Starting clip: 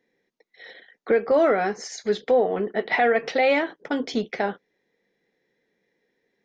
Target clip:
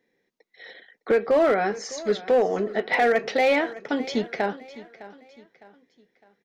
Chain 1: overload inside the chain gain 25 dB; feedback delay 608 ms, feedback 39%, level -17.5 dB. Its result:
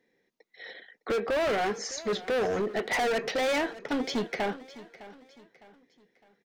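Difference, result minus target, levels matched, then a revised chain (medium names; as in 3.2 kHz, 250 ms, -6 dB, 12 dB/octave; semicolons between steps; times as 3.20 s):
overload inside the chain: distortion +17 dB
overload inside the chain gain 14 dB; feedback delay 608 ms, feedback 39%, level -17.5 dB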